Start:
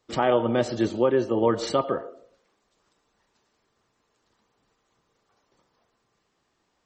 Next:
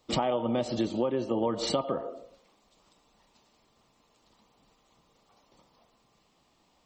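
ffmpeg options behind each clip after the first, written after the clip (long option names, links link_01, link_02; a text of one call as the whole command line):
ffmpeg -i in.wav -af "equalizer=frequency=100:width_type=o:width=0.67:gain=-7,equalizer=frequency=400:width_type=o:width=0.67:gain=-7,equalizer=frequency=1600:width_type=o:width=0.67:gain=-12,equalizer=frequency=6300:width_type=o:width=0.67:gain=-5,acompressor=threshold=-34dB:ratio=6,volume=8.5dB" out.wav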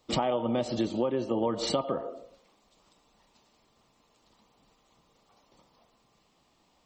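ffmpeg -i in.wav -af anull out.wav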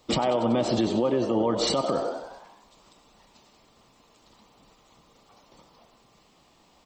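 ffmpeg -i in.wav -filter_complex "[0:a]asplit=2[link_01][link_02];[link_02]asplit=7[link_03][link_04][link_05][link_06][link_07][link_08][link_09];[link_03]adelay=94,afreqshift=70,volume=-14dB[link_10];[link_04]adelay=188,afreqshift=140,volume=-18.3dB[link_11];[link_05]adelay=282,afreqshift=210,volume=-22.6dB[link_12];[link_06]adelay=376,afreqshift=280,volume=-26.9dB[link_13];[link_07]adelay=470,afreqshift=350,volume=-31.2dB[link_14];[link_08]adelay=564,afreqshift=420,volume=-35.5dB[link_15];[link_09]adelay=658,afreqshift=490,volume=-39.8dB[link_16];[link_10][link_11][link_12][link_13][link_14][link_15][link_16]amix=inputs=7:normalize=0[link_17];[link_01][link_17]amix=inputs=2:normalize=0,alimiter=limit=-22.5dB:level=0:latency=1:release=76,volume=7.5dB" out.wav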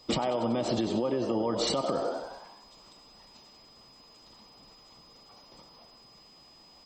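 ffmpeg -i in.wav -af "acompressor=threshold=-25dB:ratio=6,aeval=exprs='val(0)+0.00178*sin(2*PI*5000*n/s)':channel_layout=same" out.wav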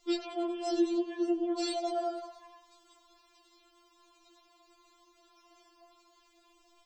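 ffmpeg -i in.wav -af "afftfilt=real='re*4*eq(mod(b,16),0)':imag='im*4*eq(mod(b,16),0)':win_size=2048:overlap=0.75,volume=-2.5dB" out.wav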